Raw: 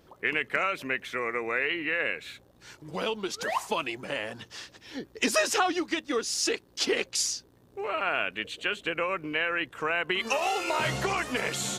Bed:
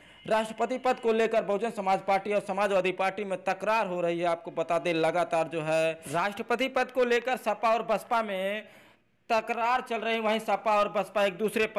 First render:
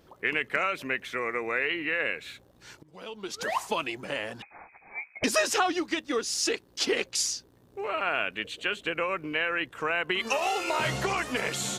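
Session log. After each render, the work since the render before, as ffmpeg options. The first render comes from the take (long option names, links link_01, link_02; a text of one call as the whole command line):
ffmpeg -i in.wav -filter_complex "[0:a]asettb=1/sr,asplit=3[link_01][link_02][link_03];[link_01]atrim=end=4.424[link_04];[link_02]atrim=start=4.42:end=5.24,asetpts=PTS-STARTPTS,afade=type=in:duration=0.004:curve=qsin,afade=type=out:start_time=0.816:duration=0.004:curve=qsin,lowpass=frequency=2200:width_type=q:width=0.5098,lowpass=frequency=2200:width_type=q:width=0.6013,lowpass=frequency=2200:width_type=q:width=0.9,lowpass=frequency=2200:width_type=q:width=2.563,afreqshift=-2600[link_05];[link_03]atrim=start=5.236[link_06];[link_04][link_05]acrossfade=duration=0.004:curve1=hsin:curve2=qsin[link_07];[link_07][link_06]acrossfade=duration=0.004:curve1=qsin:curve2=hsin,asplit=2[link_08][link_09];[link_08]atrim=end=2.83,asetpts=PTS-STARTPTS,afade=type=out:start_time=2.826:duration=0.004:curve=hsin:silence=0.141254[link_10];[link_09]atrim=start=2.83,asetpts=PTS-STARTPTS,afade=type=in:duration=0.58:curve=qua:silence=0.141254[link_11];[link_10][link_11]concat=n=2:v=0:a=1" out.wav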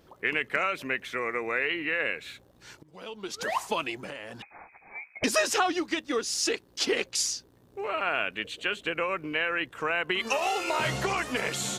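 ffmpeg -i in.wav -filter_complex "[0:a]asettb=1/sr,asplit=3[link_01][link_02][link_03];[link_01]atrim=end=4.084[link_04];[link_02]atrim=start=4.08:end=5.18,asetpts=PTS-STARTPTS,afade=type=in:duration=0.004:curve=qsin,afade=type=out:start_time=1.096:duration=0.004:curve=qsin,acompressor=threshold=-35dB:ratio=6:attack=3.2:release=140:knee=1:detection=peak[link_05];[link_03]atrim=start=5.176[link_06];[link_04][link_05]acrossfade=duration=0.004:curve1=hsin:curve2=qsin[link_07];[link_07][link_06]acrossfade=duration=0.004:curve1=qsin:curve2=hsin" out.wav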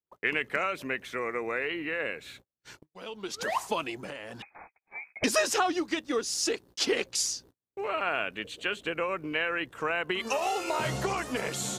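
ffmpeg -i in.wav -af "agate=range=-41dB:threshold=-49dB:ratio=16:detection=peak,adynamicequalizer=threshold=0.00891:dfrequency=2400:dqfactor=0.73:tfrequency=2400:tqfactor=0.73:attack=5:release=100:ratio=0.375:range=3:mode=cutabove:tftype=bell" out.wav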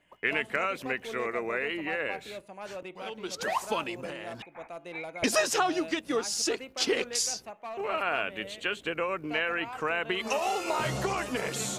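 ffmpeg -i in.wav -i bed.wav -filter_complex "[1:a]volume=-15dB[link_01];[0:a][link_01]amix=inputs=2:normalize=0" out.wav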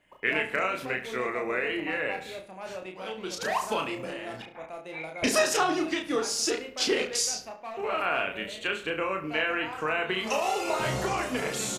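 ffmpeg -i in.wav -filter_complex "[0:a]asplit=2[link_01][link_02];[link_02]adelay=32,volume=-4dB[link_03];[link_01][link_03]amix=inputs=2:normalize=0,asplit=2[link_04][link_05];[link_05]adelay=70,lowpass=frequency=3800:poles=1,volume=-12dB,asplit=2[link_06][link_07];[link_07]adelay=70,lowpass=frequency=3800:poles=1,volume=0.45,asplit=2[link_08][link_09];[link_09]adelay=70,lowpass=frequency=3800:poles=1,volume=0.45,asplit=2[link_10][link_11];[link_11]adelay=70,lowpass=frequency=3800:poles=1,volume=0.45,asplit=2[link_12][link_13];[link_13]adelay=70,lowpass=frequency=3800:poles=1,volume=0.45[link_14];[link_04][link_06][link_08][link_10][link_12][link_14]amix=inputs=6:normalize=0" out.wav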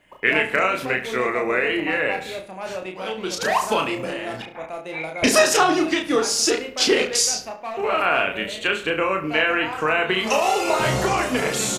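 ffmpeg -i in.wav -af "volume=8dB" out.wav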